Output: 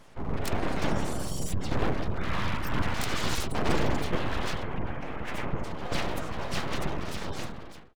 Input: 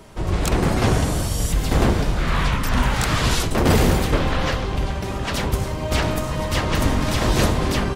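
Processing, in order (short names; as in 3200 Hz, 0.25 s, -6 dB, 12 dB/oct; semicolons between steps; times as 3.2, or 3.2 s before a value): ending faded out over 1.36 s; spectral gate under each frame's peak -30 dB strong; full-wave rectifier; 4.63–5.64 resonant high shelf 3100 Hz -8.5 dB, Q 1.5; gain -7 dB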